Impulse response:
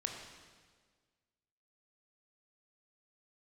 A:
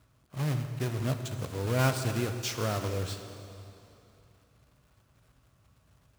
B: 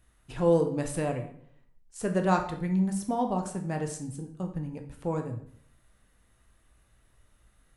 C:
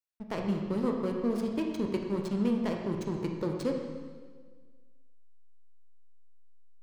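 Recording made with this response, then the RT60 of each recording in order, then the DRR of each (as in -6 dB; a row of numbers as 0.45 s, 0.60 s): C; 2.9 s, 0.60 s, 1.6 s; 6.5 dB, 4.0 dB, 1.5 dB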